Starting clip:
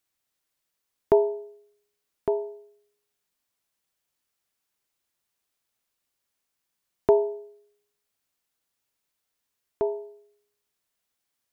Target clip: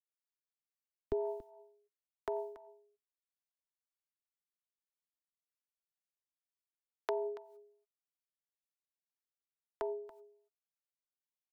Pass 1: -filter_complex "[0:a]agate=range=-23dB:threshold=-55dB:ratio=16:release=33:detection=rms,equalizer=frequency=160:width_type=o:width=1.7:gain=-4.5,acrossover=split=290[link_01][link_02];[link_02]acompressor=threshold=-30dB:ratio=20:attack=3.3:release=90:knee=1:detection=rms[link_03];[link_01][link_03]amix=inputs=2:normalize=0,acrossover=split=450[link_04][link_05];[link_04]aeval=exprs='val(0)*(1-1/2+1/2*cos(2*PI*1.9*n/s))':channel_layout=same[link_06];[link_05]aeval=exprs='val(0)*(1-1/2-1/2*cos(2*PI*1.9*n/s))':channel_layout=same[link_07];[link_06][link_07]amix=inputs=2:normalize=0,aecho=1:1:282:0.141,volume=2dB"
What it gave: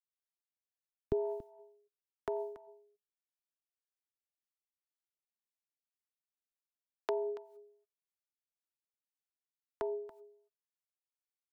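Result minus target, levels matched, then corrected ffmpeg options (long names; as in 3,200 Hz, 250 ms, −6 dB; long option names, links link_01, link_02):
125 Hz band +5.0 dB
-filter_complex "[0:a]agate=range=-23dB:threshold=-55dB:ratio=16:release=33:detection=rms,equalizer=frequency=160:width_type=o:width=1.7:gain=-14.5,acrossover=split=290[link_01][link_02];[link_02]acompressor=threshold=-30dB:ratio=20:attack=3.3:release=90:knee=1:detection=rms[link_03];[link_01][link_03]amix=inputs=2:normalize=0,acrossover=split=450[link_04][link_05];[link_04]aeval=exprs='val(0)*(1-1/2+1/2*cos(2*PI*1.9*n/s))':channel_layout=same[link_06];[link_05]aeval=exprs='val(0)*(1-1/2-1/2*cos(2*PI*1.9*n/s))':channel_layout=same[link_07];[link_06][link_07]amix=inputs=2:normalize=0,aecho=1:1:282:0.141,volume=2dB"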